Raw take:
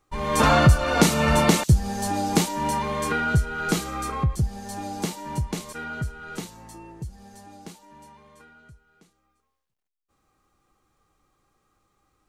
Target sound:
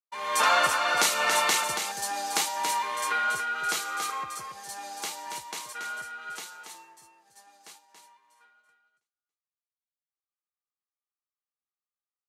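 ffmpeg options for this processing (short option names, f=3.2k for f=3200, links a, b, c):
-af "highpass=930,agate=range=-33dB:threshold=-47dB:ratio=3:detection=peak,aecho=1:1:280:0.473"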